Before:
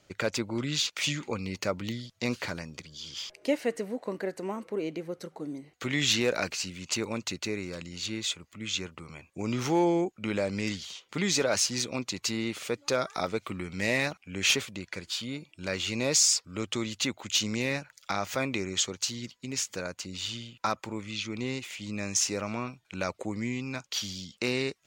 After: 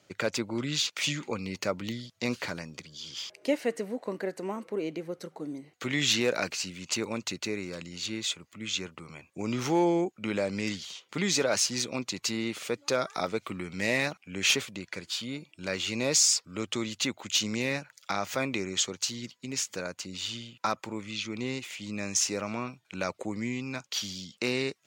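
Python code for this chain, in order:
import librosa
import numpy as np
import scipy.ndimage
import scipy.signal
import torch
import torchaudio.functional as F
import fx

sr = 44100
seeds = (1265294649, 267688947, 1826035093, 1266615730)

y = scipy.signal.sosfilt(scipy.signal.butter(2, 110.0, 'highpass', fs=sr, output='sos'), x)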